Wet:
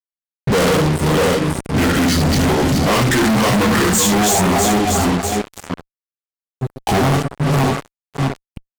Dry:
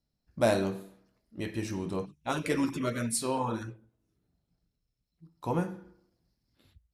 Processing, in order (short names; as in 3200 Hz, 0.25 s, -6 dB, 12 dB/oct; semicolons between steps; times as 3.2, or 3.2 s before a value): regenerating reverse delay 0.252 s, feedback 41%, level -2.5 dB; in parallel at -3 dB: compressor 8:1, threshold -35 dBFS, peak gain reduction 15.5 dB; on the sum: varispeed -21%; reverb removal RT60 0.86 s; early reflections 15 ms -5.5 dB, 72 ms -6 dB; on a send at -22.5 dB: reverb RT60 1.2 s, pre-delay 8 ms; on the sum: fuzz box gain 47 dB, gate -45 dBFS